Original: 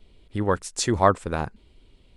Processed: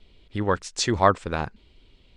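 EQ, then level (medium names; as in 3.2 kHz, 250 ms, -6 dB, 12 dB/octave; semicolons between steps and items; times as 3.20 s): distance through air 130 m; treble shelf 2.2 kHz +11 dB; -1.0 dB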